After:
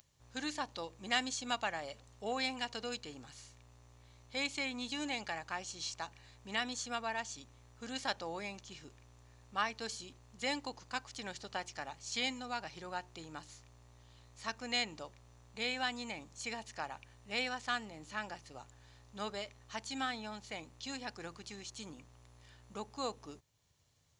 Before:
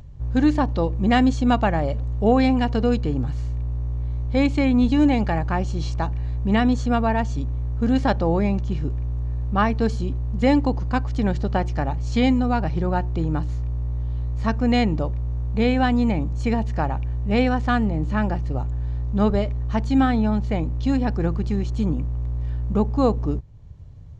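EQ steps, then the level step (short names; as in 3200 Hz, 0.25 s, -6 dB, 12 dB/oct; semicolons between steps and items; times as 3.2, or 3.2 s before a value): differentiator; +3.0 dB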